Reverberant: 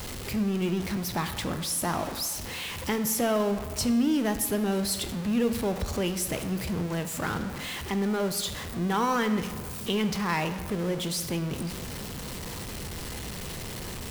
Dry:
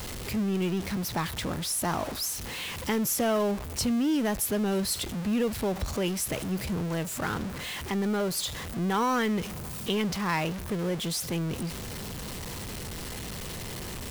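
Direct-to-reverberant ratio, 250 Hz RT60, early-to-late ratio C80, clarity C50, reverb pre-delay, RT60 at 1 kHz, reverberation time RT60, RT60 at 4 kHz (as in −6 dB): 9.0 dB, 1.6 s, 12.0 dB, 10.5 dB, 15 ms, 1.6 s, 1.6 s, 1.0 s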